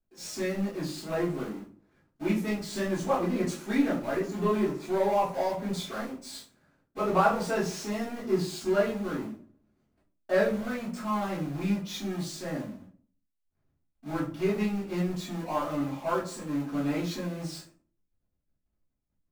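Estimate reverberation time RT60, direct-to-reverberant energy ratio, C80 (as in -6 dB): 0.45 s, -10.5 dB, 12.5 dB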